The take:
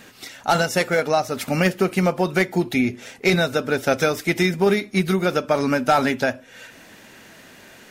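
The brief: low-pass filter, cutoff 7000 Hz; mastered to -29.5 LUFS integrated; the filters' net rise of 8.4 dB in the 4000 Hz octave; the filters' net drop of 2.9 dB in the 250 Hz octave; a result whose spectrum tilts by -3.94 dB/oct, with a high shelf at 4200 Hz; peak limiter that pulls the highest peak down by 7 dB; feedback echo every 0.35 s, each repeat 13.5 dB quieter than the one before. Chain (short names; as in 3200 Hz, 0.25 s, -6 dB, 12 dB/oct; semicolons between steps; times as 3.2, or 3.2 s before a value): LPF 7000 Hz; bell 250 Hz -4.5 dB; bell 4000 Hz +8.5 dB; high shelf 4200 Hz +3.5 dB; limiter -10.5 dBFS; feedback echo 0.35 s, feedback 21%, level -13.5 dB; gain -7.5 dB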